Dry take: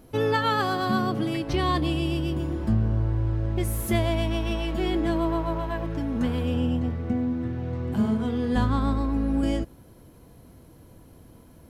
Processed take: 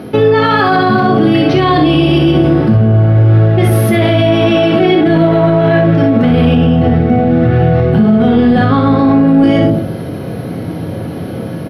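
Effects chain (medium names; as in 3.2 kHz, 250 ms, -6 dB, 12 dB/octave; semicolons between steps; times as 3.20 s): high-pass 110 Hz 24 dB/octave; in parallel at -5 dB: saturation -22 dBFS, distortion -15 dB; on the sum: boxcar filter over 6 samples; band-stop 1 kHz, Q 5.4; reverberation RT60 0.50 s, pre-delay 5 ms, DRR 3.5 dB; reverse; compression 6:1, threshold -27 dBFS, peak gain reduction 13.5 dB; reverse; early reflections 30 ms -9.5 dB, 62 ms -6 dB; loudness maximiser +25 dB; trim -1 dB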